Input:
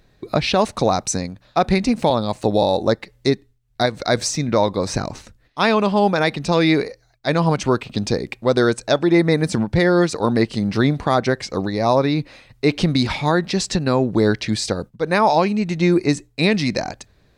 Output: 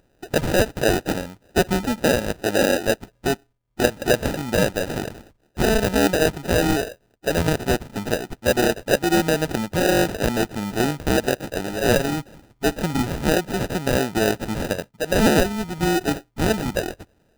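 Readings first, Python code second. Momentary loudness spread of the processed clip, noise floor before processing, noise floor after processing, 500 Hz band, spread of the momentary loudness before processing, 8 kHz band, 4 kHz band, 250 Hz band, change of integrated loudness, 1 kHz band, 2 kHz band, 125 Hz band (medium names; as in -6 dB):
8 LU, -58 dBFS, -64 dBFS, -2.0 dB, 8 LU, +0.5 dB, -2.5 dB, -3.5 dB, -3.0 dB, -5.5 dB, 0.0 dB, -4.5 dB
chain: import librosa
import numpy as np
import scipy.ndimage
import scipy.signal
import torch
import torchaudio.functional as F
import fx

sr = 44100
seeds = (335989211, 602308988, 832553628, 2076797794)

y = fx.freq_compress(x, sr, knee_hz=1900.0, ratio=1.5)
y = fx.low_shelf(y, sr, hz=310.0, db=-12.0)
y = fx.sample_hold(y, sr, seeds[0], rate_hz=1100.0, jitter_pct=0)
y = F.gain(torch.from_numpy(y), 1.5).numpy()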